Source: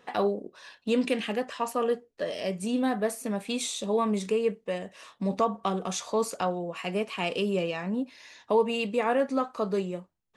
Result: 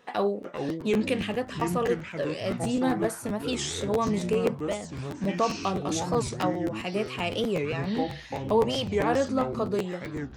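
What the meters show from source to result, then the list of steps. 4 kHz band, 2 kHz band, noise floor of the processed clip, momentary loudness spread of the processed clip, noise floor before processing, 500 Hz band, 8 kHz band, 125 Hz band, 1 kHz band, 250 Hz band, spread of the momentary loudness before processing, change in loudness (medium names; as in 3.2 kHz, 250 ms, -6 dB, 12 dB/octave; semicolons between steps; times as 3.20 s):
+2.0 dB, +1.0 dB, -42 dBFS, 7 LU, -68 dBFS, +0.5 dB, +0.5 dB, +6.5 dB, +0.5 dB, +2.0 dB, 8 LU, +1.0 dB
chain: ever faster or slower copies 333 ms, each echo -6 st, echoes 3, each echo -6 dB; crackling interface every 0.13 s, samples 512, repeat, from 0.42 s; warped record 45 rpm, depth 250 cents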